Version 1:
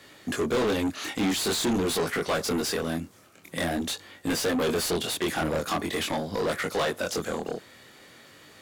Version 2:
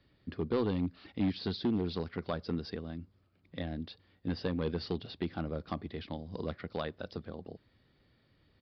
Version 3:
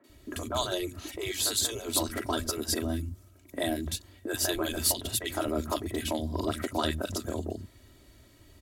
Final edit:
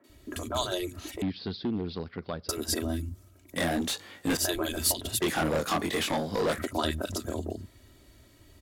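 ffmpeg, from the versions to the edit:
-filter_complex "[0:a]asplit=2[a][b];[2:a]asplit=4[c][d][e][f];[c]atrim=end=1.222[g];[1:a]atrim=start=1.218:end=2.492[h];[d]atrim=start=2.488:end=3.562[i];[a]atrim=start=3.558:end=4.372[j];[e]atrim=start=4.368:end=5.222[k];[b]atrim=start=5.218:end=6.582[l];[f]atrim=start=6.578[m];[g][h]acrossfade=d=0.004:c1=hsin:c2=hsin[n];[n][i]acrossfade=d=0.004:c1=hsin:c2=hsin[o];[o][j]acrossfade=d=0.004:c1=hsin:c2=hsin[p];[p][k]acrossfade=d=0.004:c1=hsin:c2=hsin[q];[q][l]acrossfade=d=0.004:c1=hsin:c2=hsin[r];[r][m]acrossfade=d=0.004:c1=hsin:c2=hsin"

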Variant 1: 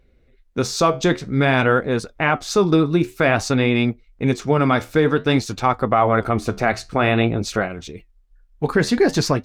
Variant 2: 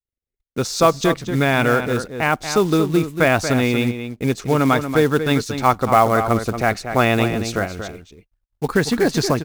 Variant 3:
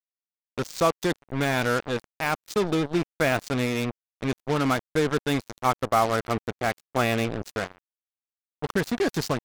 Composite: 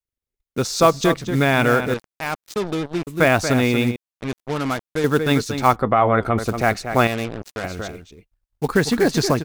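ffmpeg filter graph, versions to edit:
-filter_complex "[2:a]asplit=3[a][b][c];[1:a]asplit=5[d][e][f][g][h];[d]atrim=end=1.942[i];[a]atrim=start=1.938:end=3.072[j];[e]atrim=start=3.068:end=3.962[k];[b]atrim=start=3.958:end=5.042[l];[f]atrim=start=5.038:end=5.762[m];[0:a]atrim=start=5.758:end=6.382[n];[g]atrim=start=6.378:end=7.072[o];[c]atrim=start=7.068:end=7.642[p];[h]atrim=start=7.638[q];[i][j]acrossfade=d=0.004:c1=hsin:c2=hsin[r];[r][k]acrossfade=d=0.004:c1=hsin:c2=hsin[s];[s][l]acrossfade=d=0.004:c1=hsin:c2=hsin[t];[t][m]acrossfade=d=0.004:c1=hsin:c2=hsin[u];[u][n]acrossfade=d=0.004:c1=hsin:c2=hsin[v];[v][o]acrossfade=d=0.004:c1=hsin:c2=hsin[w];[w][p]acrossfade=d=0.004:c1=hsin:c2=hsin[x];[x][q]acrossfade=d=0.004:c1=hsin:c2=hsin"

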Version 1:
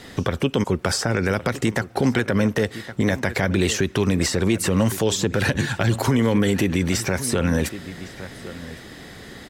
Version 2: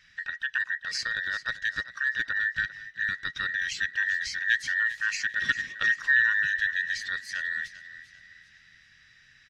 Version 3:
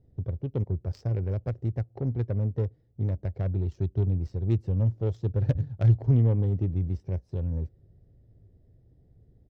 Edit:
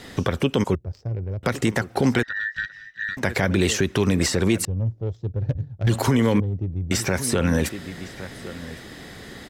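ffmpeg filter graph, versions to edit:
-filter_complex "[2:a]asplit=3[a][b][c];[0:a]asplit=5[d][e][f][g][h];[d]atrim=end=0.752[i];[a]atrim=start=0.748:end=1.432[j];[e]atrim=start=1.428:end=2.232[k];[1:a]atrim=start=2.228:end=3.172[l];[f]atrim=start=3.168:end=4.652[m];[b]atrim=start=4.648:end=5.872[n];[g]atrim=start=5.868:end=6.402[o];[c]atrim=start=6.398:end=6.912[p];[h]atrim=start=6.908[q];[i][j]acrossfade=d=0.004:c1=hsin:c2=hsin[r];[r][k]acrossfade=d=0.004:c1=hsin:c2=hsin[s];[s][l]acrossfade=d=0.004:c1=hsin:c2=hsin[t];[t][m]acrossfade=d=0.004:c1=hsin:c2=hsin[u];[u][n]acrossfade=d=0.004:c1=hsin:c2=hsin[v];[v][o]acrossfade=d=0.004:c1=hsin:c2=hsin[w];[w][p]acrossfade=d=0.004:c1=hsin:c2=hsin[x];[x][q]acrossfade=d=0.004:c1=hsin:c2=hsin"

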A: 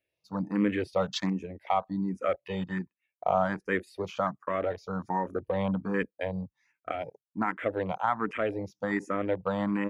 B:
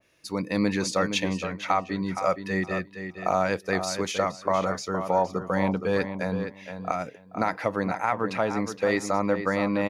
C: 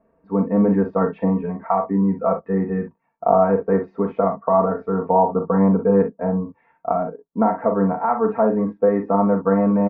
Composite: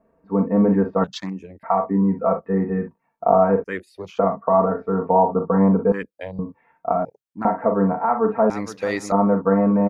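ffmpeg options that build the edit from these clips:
-filter_complex "[0:a]asplit=4[a][b][c][d];[2:a]asplit=6[e][f][g][h][i][j];[e]atrim=end=1.042[k];[a]atrim=start=1.038:end=1.632[l];[f]atrim=start=1.628:end=3.642[m];[b]atrim=start=3.638:end=4.192[n];[g]atrim=start=4.188:end=5.922[o];[c]atrim=start=5.918:end=6.392[p];[h]atrim=start=6.388:end=7.052[q];[d]atrim=start=7.048:end=7.452[r];[i]atrim=start=7.448:end=8.502[s];[1:a]atrim=start=8.498:end=9.122[t];[j]atrim=start=9.118[u];[k][l]acrossfade=d=0.004:c1=hsin:c2=hsin[v];[v][m]acrossfade=d=0.004:c1=hsin:c2=hsin[w];[w][n]acrossfade=d=0.004:c1=hsin:c2=hsin[x];[x][o]acrossfade=d=0.004:c1=hsin:c2=hsin[y];[y][p]acrossfade=d=0.004:c1=hsin:c2=hsin[z];[z][q]acrossfade=d=0.004:c1=hsin:c2=hsin[aa];[aa][r]acrossfade=d=0.004:c1=hsin:c2=hsin[ab];[ab][s]acrossfade=d=0.004:c1=hsin:c2=hsin[ac];[ac][t]acrossfade=d=0.004:c1=hsin:c2=hsin[ad];[ad][u]acrossfade=d=0.004:c1=hsin:c2=hsin"

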